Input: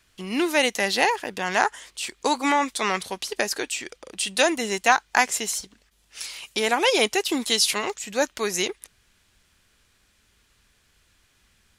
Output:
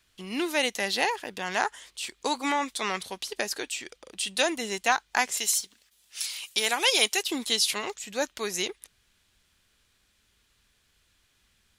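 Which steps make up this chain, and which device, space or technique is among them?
5.37–7.23 s: tilt EQ +2.5 dB/octave; presence and air boost (peaking EQ 3.6 kHz +3.5 dB 0.77 oct; treble shelf 11 kHz +4 dB); trim -6 dB

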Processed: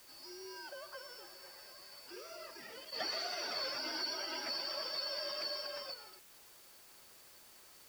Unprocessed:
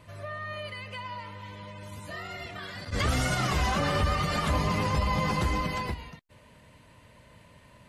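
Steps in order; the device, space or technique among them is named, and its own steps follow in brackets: split-band scrambled radio (four frequency bands reordered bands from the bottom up 2341; band-pass 380–3000 Hz; white noise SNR 16 dB); trim -6 dB

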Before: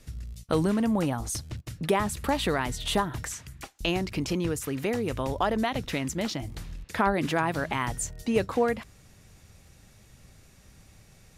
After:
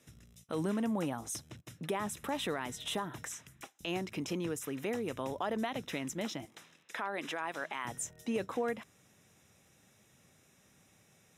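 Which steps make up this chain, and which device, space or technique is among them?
PA system with an anti-feedback notch (high-pass 170 Hz 12 dB/octave; Butterworth band-stop 4.5 kHz, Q 5.6; peak limiter -17.5 dBFS, peak gain reduction 7.5 dB); 6.45–7.85 s: frequency weighting A; trim -6.5 dB

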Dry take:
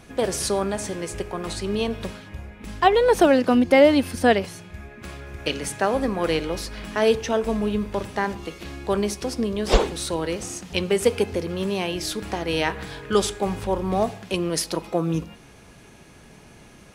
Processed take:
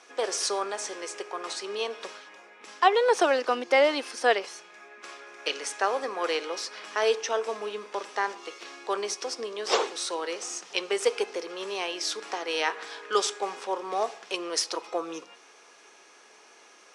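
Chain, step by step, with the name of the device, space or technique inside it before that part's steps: phone speaker on a table (cabinet simulation 420–8700 Hz, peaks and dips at 600 Hz -5 dB, 1.2 kHz +4 dB, 5.6 kHz +6 dB); trim -2.5 dB

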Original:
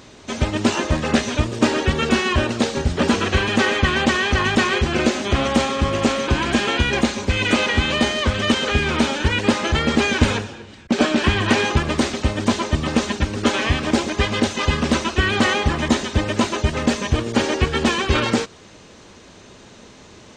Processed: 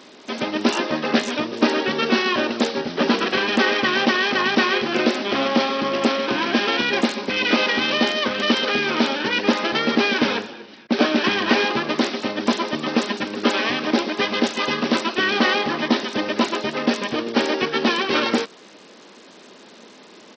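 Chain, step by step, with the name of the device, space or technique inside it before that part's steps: Bluetooth headset (high-pass 210 Hz 24 dB/octave; resampled via 16 kHz; SBC 64 kbps 44.1 kHz)

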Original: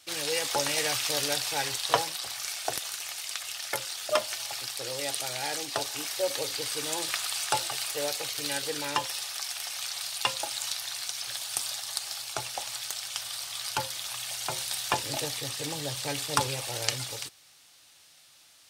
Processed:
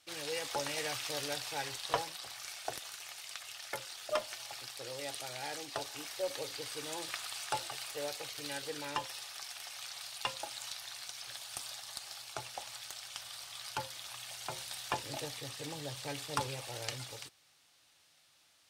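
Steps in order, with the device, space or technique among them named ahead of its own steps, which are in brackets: tube preamp driven hard (valve stage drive 8 dB, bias 0.2; treble shelf 4.1 kHz -6 dB); trim -6.5 dB

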